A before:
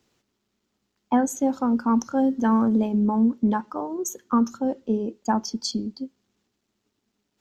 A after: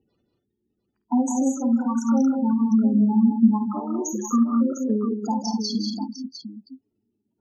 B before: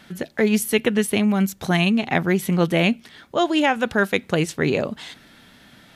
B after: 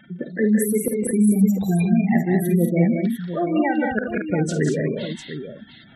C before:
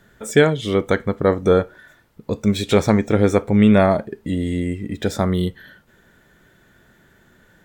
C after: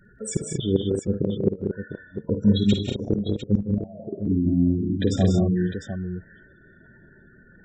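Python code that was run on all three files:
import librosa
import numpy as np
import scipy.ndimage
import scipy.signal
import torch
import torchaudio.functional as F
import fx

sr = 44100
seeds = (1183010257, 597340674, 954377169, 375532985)

p1 = fx.spec_gate(x, sr, threshold_db=-10, keep='strong')
p2 = fx.gate_flip(p1, sr, shuts_db=-9.0, range_db=-29)
p3 = fx.dynamic_eq(p2, sr, hz=660.0, q=1.2, threshold_db=-37.0, ratio=4.0, max_db=-6)
p4 = p3 + fx.echo_multitap(p3, sr, ms=(52, 72, 158, 189, 228, 702), db=(-10.0, -19.0, -11.0, -5.0, -7.5, -10.0), dry=0)
y = p4 * 10.0 ** (1.0 / 20.0)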